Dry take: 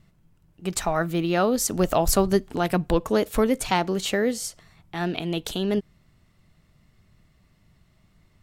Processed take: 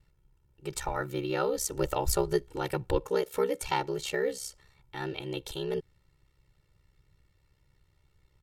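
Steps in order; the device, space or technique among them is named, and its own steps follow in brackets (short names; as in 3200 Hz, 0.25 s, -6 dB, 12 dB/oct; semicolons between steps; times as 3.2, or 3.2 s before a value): 3.06–3.63 HPF 130 Hz 12 dB/oct; ring-modulated robot voice (ring modulator 33 Hz; comb 2.2 ms, depth 95%); gain -7 dB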